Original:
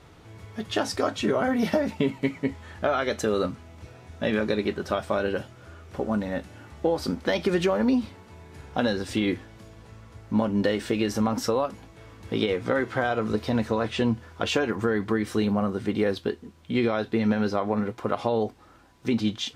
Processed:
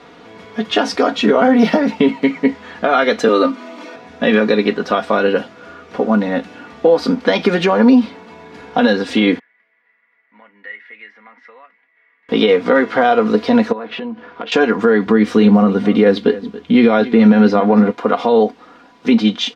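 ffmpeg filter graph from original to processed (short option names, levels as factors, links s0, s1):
-filter_complex "[0:a]asettb=1/sr,asplit=3[s0][s1][s2];[s0]atrim=end=3.284[s3];[s1]atrim=start=3.28:end=3.96,asetpts=PTS-STARTPTS,afade=t=in:d=0.004:c=qsin,afade=t=out:st=0.676:d=0.004:c=qsin,highpass=f=240:w=0.5412,highpass=f=240:w=1.3066,acompressor=mode=upward:threshold=0.0112:ratio=2.5:attack=3.2:release=140:knee=2.83:detection=peak,aecho=1:1:3.3:0.69,atrim=end_sample=29988[s4];[s2]atrim=start=3.956[s5];[s3][s4]acrossfade=d=0.004:c1=hsin:c2=qsin[s6];[s6][s5]acrossfade=d=0.004:c1=qsin:c2=hsin,asettb=1/sr,asplit=3[s7][s8][s9];[s7]atrim=end=9.394[s10];[s8]atrim=start=9.39:end=12.29,asetpts=PTS-STARTPTS,afade=t=in:d=0.004:c=qsin,afade=t=out:st=2.896:d=0.004:c=qsin,bandpass=f=2000:t=q:w=15,aemphasis=mode=reproduction:type=75fm[s11];[s9]atrim=start=12.286[s12];[s10][s11]acrossfade=d=0.004:c1=hsin:c2=qsin[s13];[s13][s12]acrossfade=d=0.004:c1=qsin:c2=hsin,asettb=1/sr,asplit=3[s14][s15][s16];[s14]atrim=end=13.724[s17];[s15]atrim=start=13.72:end=14.52,asetpts=PTS-STARTPTS,afade=t=in:d=0.004:c=qsin,afade=t=out:st=0.796:d=0.004:c=qsin,lowpass=3000,equalizer=f=94:t=o:w=1.2:g=-8.5,acompressor=threshold=0.02:ratio=12:attack=3.2:release=140:knee=1:detection=peak[s18];[s16]atrim=start=14.516[s19];[s17][s18]acrossfade=d=0.004:c1=hsin:c2=qsin[s20];[s20][s19]acrossfade=d=0.004:c1=qsin:c2=hsin,asettb=1/sr,asplit=3[s21][s22][s23];[s21]atrim=end=15.064[s24];[s22]atrim=start=15.06:end=17.91,asetpts=PTS-STARTPTS,afade=t=in:d=0.004:c=qsin,afade=t=out:st=2.846:d=0.004:c=qsin,equalizer=f=66:w=0.35:g=9,aecho=1:1:280:0.126,atrim=end_sample=125685[s25];[s23]atrim=start=17.906[s26];[s24][s25]acrossfade=d=0.004:c1=hsin:c2=qsin[s27];[s27][s26]acrossfade=d=0.004:c1=qsin:c2=hsin,acrossover=split=170 5200:gain=0.0794 1 0.126[s28][s29][s30];[s28][s29][s30]amix=inputs=3:normalize=0,aecho=1:1:4.2:0.58,alimiter=level_in=4.22:limit=0.891:release=50:level=0:latency=1,volume=0.891"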